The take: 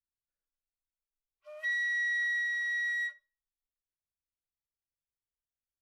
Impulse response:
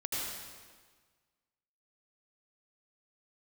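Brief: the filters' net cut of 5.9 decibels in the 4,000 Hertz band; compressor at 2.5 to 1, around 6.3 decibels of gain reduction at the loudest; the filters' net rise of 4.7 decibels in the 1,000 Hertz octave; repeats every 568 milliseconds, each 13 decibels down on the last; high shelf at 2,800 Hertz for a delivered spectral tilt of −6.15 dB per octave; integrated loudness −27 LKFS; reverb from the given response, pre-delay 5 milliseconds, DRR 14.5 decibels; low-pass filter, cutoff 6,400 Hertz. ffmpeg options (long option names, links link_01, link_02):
-filter_complex "[0:a]lowpass=6400,equalizer=frequency=1000:width_type=o:gain=7,highshelf=frequency=2800:gain=-3.5,equalizer=frequency=4000:width_type=o:gain=-3.5,acompressor=threshold=-40dB:ratio=2.5,aecho=1:1:568|1136|1704:0.224|0.0493|0.0108,asplit=2[link_01][link_02];[1:a]atrim=start_sample=2205,adelay=5[link_03];[link_02][link_03]afir=irnorm=-1:irlink=0,volume=-19dB[link_04];[link_01][link_04]amix=inputs=2:normalize=0,volume=10dB"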